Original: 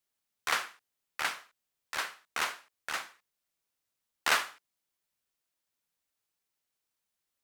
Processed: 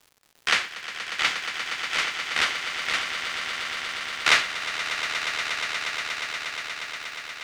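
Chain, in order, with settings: octave divider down 1 oct, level -4 dB; formant shift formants +6 st; low-pass 5.5 kHz 12 dB/octave; crackle 200 per s -50 dBFS; on a send: echo with a slow build-up 119 ms, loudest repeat 8, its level -11.5 dB; on the sum: trim +8.5 dB

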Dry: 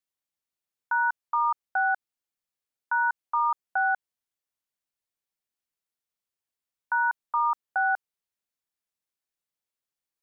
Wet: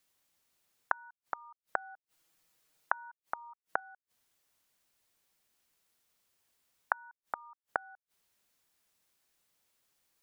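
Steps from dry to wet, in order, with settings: 1.63–3.80 s: comb 6.3 ms, depth 91%; inverted gate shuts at -33 dBFS, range -42 dB; trim +13.5 dB

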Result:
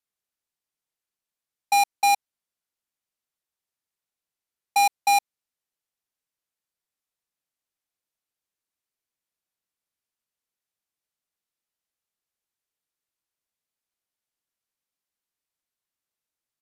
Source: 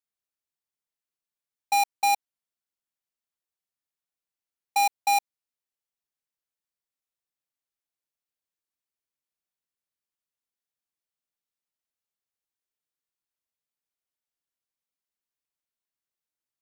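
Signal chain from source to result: resampled via 32 kHz; trim +3 dB

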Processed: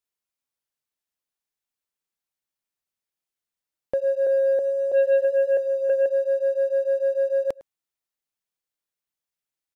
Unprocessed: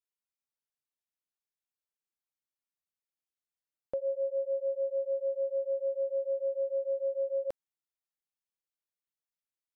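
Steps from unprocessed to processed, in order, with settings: 3.94–6.06 s: chunks repeated in reverse 326 ms, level -0.5 dB; waveshaping leveller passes 1; echo from a far wall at 18 m, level -21 dB; trim +6.5 dB

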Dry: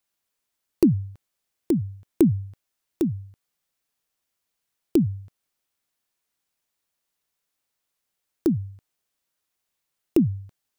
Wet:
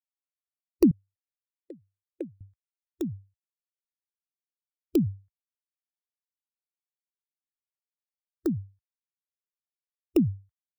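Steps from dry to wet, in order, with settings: expander on every frequency bin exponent 2; 0.91–2.41 s: vowel filter e

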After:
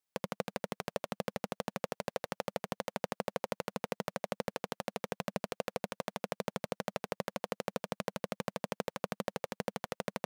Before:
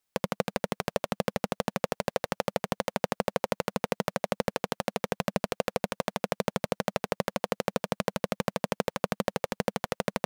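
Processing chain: bass shelf 66 Hz -8 dB; trim -7.5 dB

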